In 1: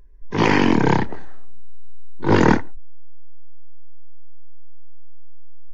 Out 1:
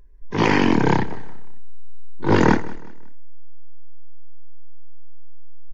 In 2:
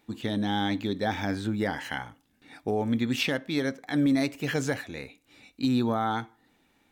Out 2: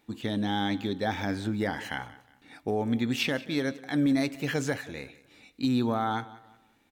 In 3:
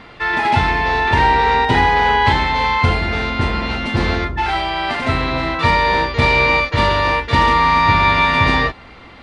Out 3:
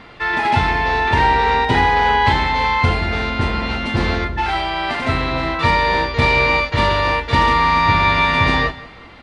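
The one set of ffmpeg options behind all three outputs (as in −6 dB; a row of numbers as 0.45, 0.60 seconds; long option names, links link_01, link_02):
-af "aecho=1:1:182|364|546:0.112|0.0393|0.0137,volume=-1dB"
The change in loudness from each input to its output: −1.0, −1.0, −1.0 LU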